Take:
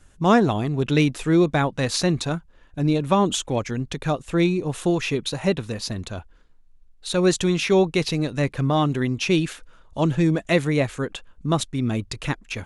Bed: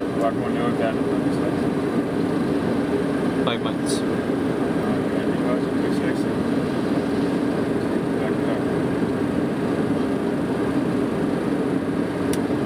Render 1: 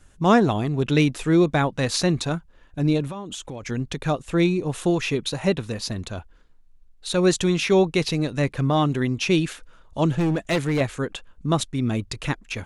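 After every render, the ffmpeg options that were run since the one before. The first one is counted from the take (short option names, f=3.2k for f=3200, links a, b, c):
-filter_complex "[0:a]asettb=1/sr,asplit=3[a][b][c];[a]atrim=end=3.074[d];[b]atrim=start=3.07:end=3.63,asetpts=PTS-STARTPTS,afade=t=in:d=0.004:c=qsin,afade=t=out:st=0.556:d=0.004:c=qsin,acompressor=threshold=-30dB:ratio=10:attack=3.2:release=140:knee=1:detection=peak[e];[c]atrim=start=3.626[f];[d][e]acrossfade=d=0.004:c1=hsin:c2=qsin[g];[g][f]acrossfade=d=0.004:c1=qsin:c2=hsin,asettb=1/sr,asplit=3[h][i][j];[h]atrim=end=10.184[k];[i]atrim=start=10.18:end=10.81,asetpts=PTS-STARTPTS,afade=t=in:d=0.004:c=qsin,afade=t=out:st=0.626:d=0.004:c=qsin,volume=18dB,asoftclip=hard,volume=-18dB[l];[j]atrim=start=10.806[m];[k][l]acrossfade=d=0.004:c1=hsin:c2=qsin[n];[n][m]acrossfade=d=0.004:c1=qsin:c2=hsin"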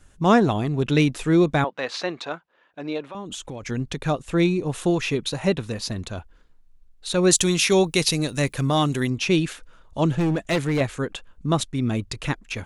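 -filter_complex "[0:a]asettb=1/sr,asplit=3[a][b][c];[a]atrim=end=1.644[d];[b]atrim=start=1.64:end=3.15,asetpts=PTS-STARTPTS,afade=t=in:d=0.004:c=qsin,afade=t=out:st=1.506:d=0.004:c=qsin,highpass=480,lowpass=3.4k[e];[c]atrim=start=3.146[f];[d][e]acrossfade=d=0.004:c1=hsin:c2=qsin[g];[g][f]acrossfade=d=0.004:c1=qsin:c2=hsin,asettb=1/sr,asplit=3[h][i][j];[h]atrim=end=7.314[k];[i]atrim=start=7.31:end=9.1,asetpts=PTS-STARTPTS,afade=t=in:d=0.004:c=qsin,afade=t=out:st=1.786:d=0.004:c=qsin,aemphasis=mode=production:type=75fm[l];[j]atrim=start=9.096[m];[k][l]acrossfade=d=0.004:c1=hsin:c2=qsin[n];[n][m]acrossfade=d=0.004:c1=qsin:c2=hsin"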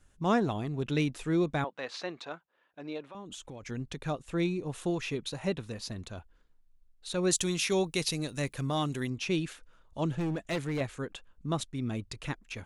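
-af "volume=-10dB"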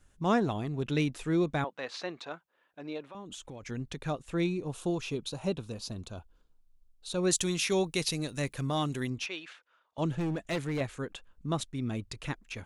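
-filter_complex "[0:a]asettb=1/sr,asplit=3[a][b][c];[a]atrim=end=4.694[d];[b]atrim=start=4.69:end=7.2,asetpts=PTS-STARTPTS,afade=t=in:d=0.004:c=qsin,afade=t=out:st=2.506:d=0.004:c=qsin,equalizer=f=1.9k:w=3:g=-12[e];[c]atrim=start=7.196[f];[d][e]acrossfade=d=0.004:c1=hsin:c2=qsin[g];[g][f]acrossfade=d=0.004:c1=qsin:c2=hsin,asettb=1/sr,asplit=3[h][i][j];[h]atrim=end=9.264[k];[i]atrim=start=9.26:end=9.98,asetpts=PTS-STARTPTS,afade=t=in:d=0.004:c=qsin,afade=t=out:st=0.716:d=0.004:c=qsin,highpass=750,lowpass=3.7k[l];[j]atrim=start=9.976[m];[k][l]acrossfade=d=0.004:c1=hsin:c2=qsin[n];[n][m]acrossfade=d=0.004:c1=qsin:c2=hsin"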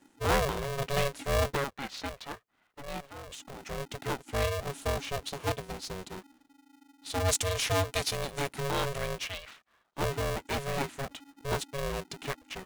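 -af "aeval=exprs='val(0)*sgn(sin(2*PI*280*n/s))':c=same"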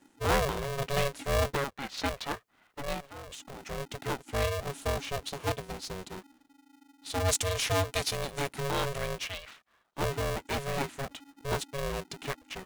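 -filter_complex "[0:a]asplit=3[a][b][c];[a]afade=t=out:st=1.97:d=0.02[d];[b]acontrast=54,afade=t=in:st=1.97:d=0.02,afade=t=out:st=2.93:d=0.02[e];[c]afade=t=in:st=2.93:d=0.02[f];[d][e][f]amix=inputs=3:normalize=0"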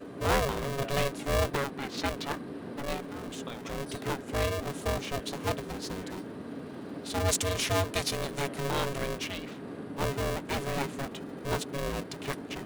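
-filter_complex "[1:a]volume=-18.5dB[a];[0:a][a]amix=inputs=2:normalize=0"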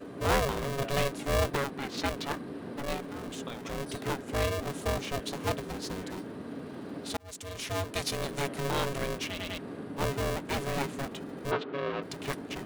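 -filter_complex "[0:a]asplit=3[a][b][c];[a]afade=t=out:st=11.5:d=0.02[d];[b]highpass=f=110:w=0.5412,highpass=f=110:w=1.3066,equalizer=f=130:t=q:w=4:g=-8,equalizer=f=200:t=q:w=4:g=-7,equalizer=f=420:t=q:w=4:g=4,equalizer=f=1.3k:t=q:w=4:g=6,lowpass=f=3.5k:w=0.5412,lowpass=f=3.5k:w=1.3066,afade=t=in:st=11.5:d=0.02,afade=t=out:st=12.02:d=0.02[e];[c]afade=t=in:st=12.02:d=0.02[f];[d][e][f]amix=inputs=3:normalize=0,asplit=5[g][h][i][j][k];[g]atrim=end=7.17,asetpts=PTS-STARTPTS,afade=t=out:st=7.166:d=0.004:c=hsin[l];[h]atrim=start=7.17:end=9.382,asetpts=PTS-STARTPTS,afade=t=in:d=1.09[m];[i]atrim=start=9.278:end=9.382[n];[j]atrim=start=9.278:end=9.382[o];[k]atrim=start=9.578[p];[l][m]concat=n=2:v=0:a=1[q];[q][n]acrossfade=d=0.004:c1=hsin:c2=hsin[r];[r][o]acrossfade=d=0.004:c1=hsin:c2=hsin[s];[s][p]acrossfade=d=0.004:c1=hsin:c2=hsin"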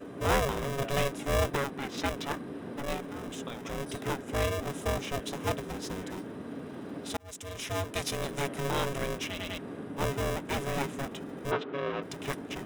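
-af "bandreject=f=4.4k:w=6.3"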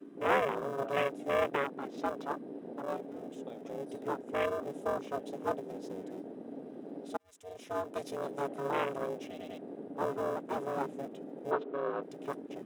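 -af "afwtdn=0.02,highpass=290"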